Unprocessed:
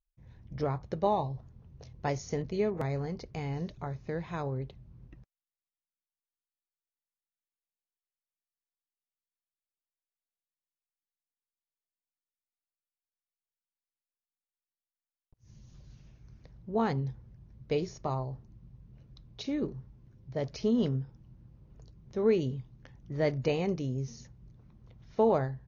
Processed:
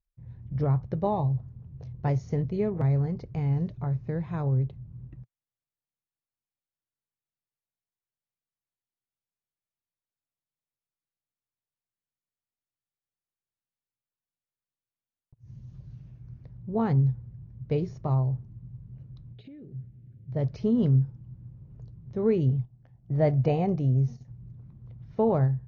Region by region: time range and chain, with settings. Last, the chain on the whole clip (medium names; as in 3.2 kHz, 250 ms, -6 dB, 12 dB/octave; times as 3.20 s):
19.33–20.32 s: high-pass 120 Hz 6 dB/octave + compression 12:1, threshold -44 dBFS + static phaser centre 2.5 kHz, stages 4
22.49–24.28 s: gate -49 dBFS, range -11 dB + peaking EQ 710 Hz +11.5 dB 0.38 oct
whole clip: low-pass 1.6 kHz 6 dB/octave; peaking EQ 120 Hz +12.5 dB 1.2 oct